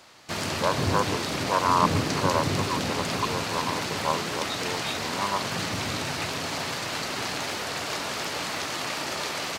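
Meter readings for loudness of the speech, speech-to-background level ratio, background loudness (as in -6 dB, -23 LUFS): -30.0 LUFS, -1.5 dB, -28.5 LUFS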